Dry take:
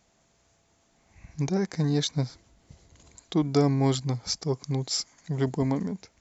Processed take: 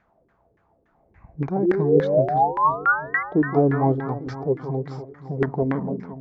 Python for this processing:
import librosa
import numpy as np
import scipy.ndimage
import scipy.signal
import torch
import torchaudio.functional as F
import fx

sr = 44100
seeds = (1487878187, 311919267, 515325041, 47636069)

y = fx.spec_paint(x, sr, seeds[0], shape='rise', start_s=1.62, length_s=1.61, low_hz=330.0, high_hz=2100.0, level_db=-26.0)
y = fx.echo_alternate(y, sr, ms=170, hz=1500.0, feedback_pct=71, wet_db=-8.0)
y = fx.filter_lfo_lowpass(y, sr, shape='saw_down', hz=3.5, low_hz=360.0, high_hz=1800.0, q=3.6)